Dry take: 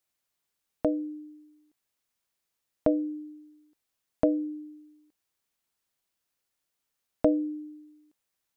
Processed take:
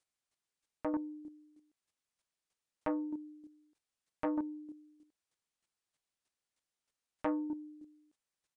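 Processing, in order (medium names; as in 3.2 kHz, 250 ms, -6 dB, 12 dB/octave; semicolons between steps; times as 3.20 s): square tremolo 3.2 Hz, depth 60%, duty 10%; resampled via 22.05 kHz; transformer saturation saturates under 1.1 kHz; trim +1 dB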